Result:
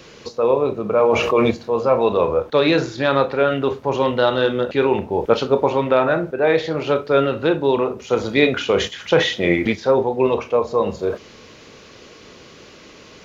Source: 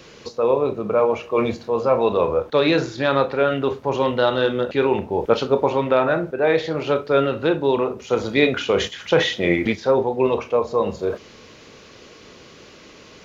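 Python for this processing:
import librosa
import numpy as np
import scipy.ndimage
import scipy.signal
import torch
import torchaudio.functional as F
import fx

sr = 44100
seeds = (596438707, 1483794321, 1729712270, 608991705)

y = fx.env_flatten(x, sr, amount_pct=70, at=(1.0, 1.51))
y = F.gain(torch.from_numpy(y), 1.5).numpy()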